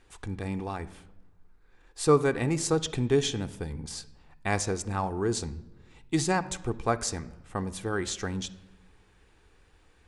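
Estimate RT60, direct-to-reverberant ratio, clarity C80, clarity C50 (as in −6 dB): 1.0 s, 9.5 dB, 19.5 dB, 16.5 dB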